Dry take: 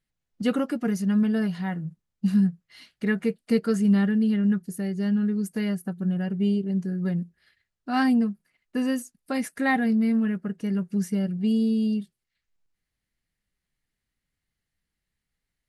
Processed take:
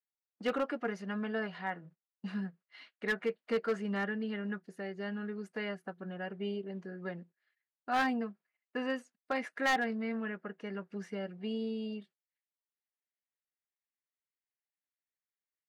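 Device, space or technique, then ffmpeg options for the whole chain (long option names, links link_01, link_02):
walkie-talkie: -af "highpass=530,lowpass=2500,asoftclip=type=hard:threshold=-25dB,agate=range=-14dB:threshold=-57dB:ratio=16:detection=peak"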